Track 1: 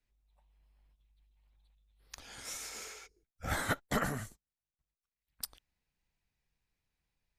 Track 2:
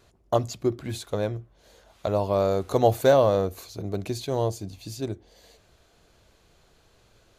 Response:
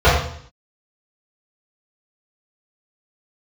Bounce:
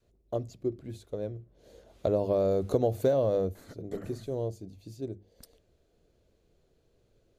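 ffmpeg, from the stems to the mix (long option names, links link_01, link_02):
-filter_complex "[0:a]acompressor=threshold=-52dB:ratio=2,volume=-5dB,asplit=3[link_01][link_02][link_03];[link_01]atrim=end=1.44,asetpts=PTS-STARTPTS,afade=type=out:start_time=1.436:duration=0.004:curve=hsin[link_04];[link_02]atrim=start=1.44:end=3.55,asetpts=PTS-STARTPTS,volume=0[link_05];[link_03]atrim=start=3.55,asetpts=PTS-STARTPTS,afade=type=in:duration=0.004:curve=hsin[link_06];[link_04][link_05][link_06]concat=n=3:v=0:a=1[link_07];[1:a]bandreject=frequency=50:width_type=h:width=6,bandreject=frequency=100:width_type=h:width=6,bandreject=frequency=150:width_type=h:width=6,bandreject=frequency=200:width_type=h:width=6,adynamicequalizer=threshold=0.0251:dfrequency=380:dqfactor=1.2:tfrequency=380:tqfactor=1.2:attack=5:release=100:ratio=0.375:range=2.5:mode=cutabove:tftype=bell,volume=-7dB,afade=type=in:start_time=1.38:duration=0.31:silence=0.298538,afade=type=out:start_time=3.37:duration=0.22:silence=0.334965,asplit=2[link_08][link_09];[link_09]apad=whole_len=325559[link_10];[link_07][link_10]sidechaincompress=threshold=-36dB:ratio=3:attack=16:release=996[link_11];[link_11][link_08]amix=inputs=2:normalize=0,lowshelf=frequency=680:width_type=q:width=1.5:gain=9.5,acompressor=threshold=-22dB:ratio=6"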